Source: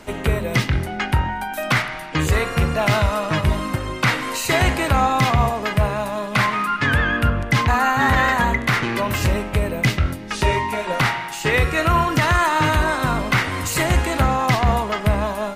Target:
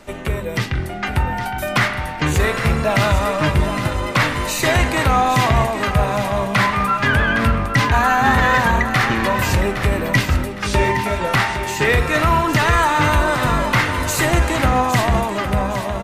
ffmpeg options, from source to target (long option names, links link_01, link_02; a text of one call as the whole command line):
ffmpeg -i in.wav -filter_complex "[0:a]dynaudnorm=framelen=160:gausssize=13:maxgain=8dB,flanger=delay=1.6:depth=3.4:regen=80:speed=0.23:shape=sinusoidal,asetrate=42777,aresample=44100,asoftclip=type=tanh:threshold=-7dB,asplit=2[link_01][link_02];[link_02]aecho=0:1:812|1624|2436:0.335|0.104|0.0322[link_03];[link_01][link_03]amix=inputs=2:normalize=0,volume=2.5dB" out.wav